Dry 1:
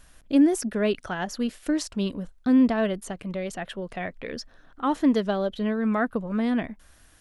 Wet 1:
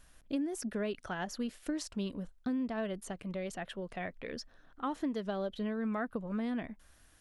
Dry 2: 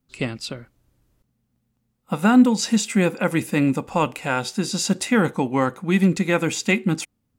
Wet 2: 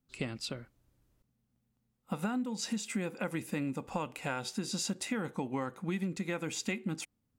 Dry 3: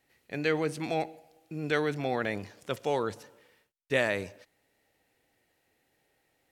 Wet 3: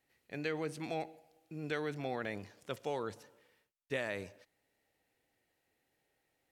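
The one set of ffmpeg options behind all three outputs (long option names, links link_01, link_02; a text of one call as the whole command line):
ffmpeg -i in.wav -af "acompressor=threshold=-24dB:ratio=10,volume=-7dB" out.wav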